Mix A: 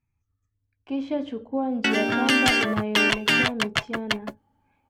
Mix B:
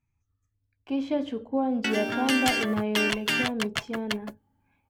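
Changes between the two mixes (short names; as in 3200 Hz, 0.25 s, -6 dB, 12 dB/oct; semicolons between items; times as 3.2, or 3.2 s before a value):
background -6.5 dB; master: add high shelf 8400 Hz +11 dB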